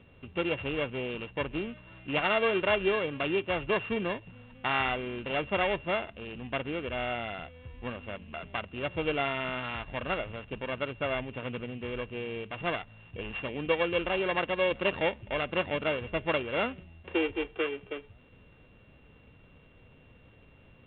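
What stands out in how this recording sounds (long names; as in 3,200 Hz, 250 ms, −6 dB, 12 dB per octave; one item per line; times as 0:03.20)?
a buzz of ramps at a fixed pitch in blocks of 16 samples
A-law companding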